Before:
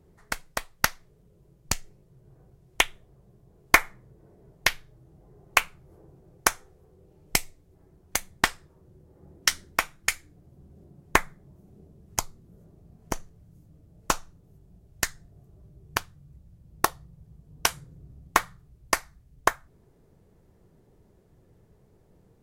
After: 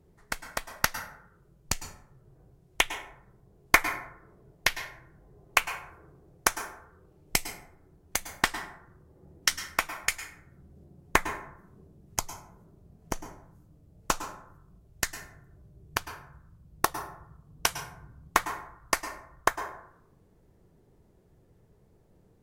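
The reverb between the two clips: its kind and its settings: plate-style reverb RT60 0.74 s, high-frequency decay 0.45×, pre-delay 95 ms, DRR 9.5 dB; trim -2.5 dB

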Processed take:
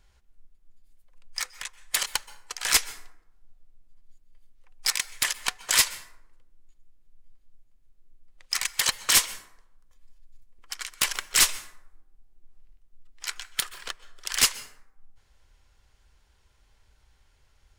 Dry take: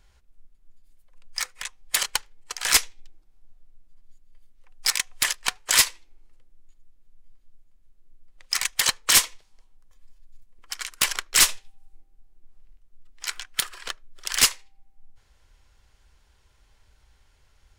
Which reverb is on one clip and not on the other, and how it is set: plate-style reverb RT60 0.77 s, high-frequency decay 0.5×, pre-delay 115 ms, DRR 17 dB; trim -2.5 dB

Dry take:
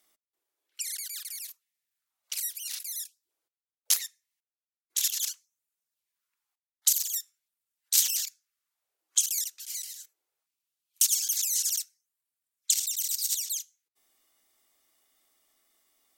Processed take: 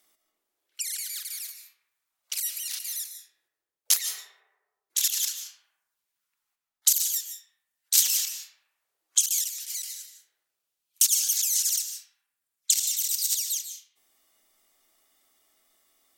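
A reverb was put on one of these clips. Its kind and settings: algorithmic reverb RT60 1.3 s, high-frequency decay 0.35×, pre-delay 110 ms, DRR 5.5 dB; trim +2.5 dB

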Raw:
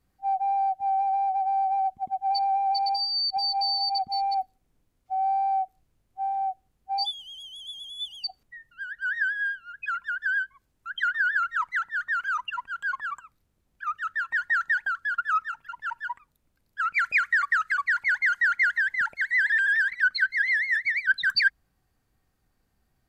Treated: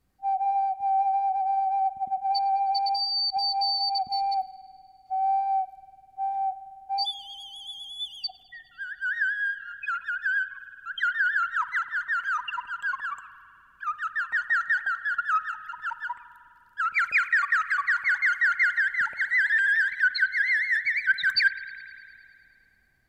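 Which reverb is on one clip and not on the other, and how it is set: spring tank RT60 2.5 s, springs 50 ms, chirp 55 ms, DRR 12.5 dB

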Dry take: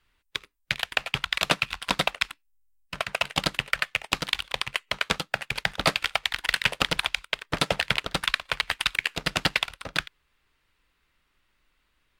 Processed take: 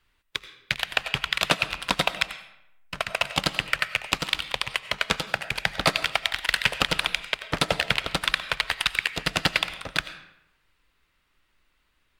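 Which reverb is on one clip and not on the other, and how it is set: algorithmic reverb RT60 0.83 s, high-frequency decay 0.75×, pre-delay 55 ms, DRR 12.5 dB; trim +1 dB

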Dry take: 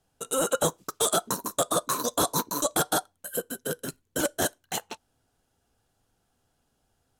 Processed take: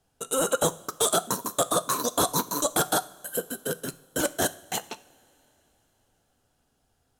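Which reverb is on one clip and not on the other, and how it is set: two-slope reverb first 0.57 s, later 3.9 s, from -18 dB, DRR 15 dB; trim +1 dB

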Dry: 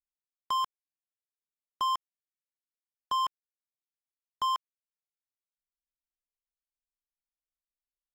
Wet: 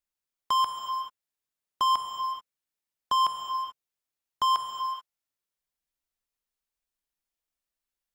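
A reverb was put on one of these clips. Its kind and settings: gated-style reverb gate 460 ms flat, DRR 4 dB; trim +4.5 dB

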